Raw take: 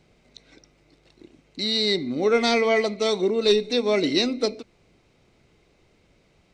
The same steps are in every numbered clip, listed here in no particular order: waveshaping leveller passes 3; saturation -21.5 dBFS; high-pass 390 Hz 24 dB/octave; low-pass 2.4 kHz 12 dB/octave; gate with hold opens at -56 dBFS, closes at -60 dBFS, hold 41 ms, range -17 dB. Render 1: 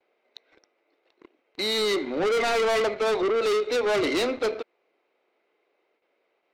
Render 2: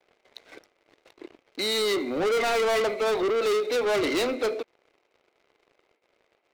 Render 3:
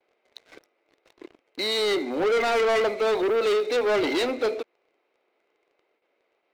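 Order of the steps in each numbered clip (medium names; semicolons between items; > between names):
high-pass > gate with hold > waveshaping leveller > low-pass > saturation; high-pass > gate with hold > low-pass > saturation > waveshaping leveller; saturation > high-pass > gate with hold > low-pass > waveshaping leveller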